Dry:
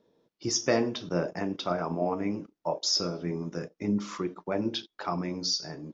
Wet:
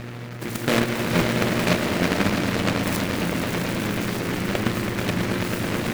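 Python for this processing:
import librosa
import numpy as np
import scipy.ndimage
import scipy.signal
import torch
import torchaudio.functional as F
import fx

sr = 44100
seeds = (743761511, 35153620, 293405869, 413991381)

p1 = fx.bin_compress(x, sr, power=0.4)
p2 = fx.echo_alternate(p1, sr, ms=164, hz=2100.0, feedback_pct=80, wet_db=-8.5)
p3 = fx.level_steps(p2, sr, step_db=11)
p4 = fx.tilt_eq(p3, sr, slope=-2.0)
p5 = p4 + fx.echo_swell(p4, sr, ms=109, loudest=5, wet_db=-8.0, dry=0)
p6 = fx.dmg_buzz(p5, sr, base_hz=120.0, harmonics=6, level_db=-38.0, tilt_db=-5, odd_only=False)
p7 = fx.low_shelf(p6, sr, hz=93.0, db=8.5)
y = fx.noise_mod_delay(p7, sr, seeds[0], noise_hz=1500.0, depth_ms=0.23)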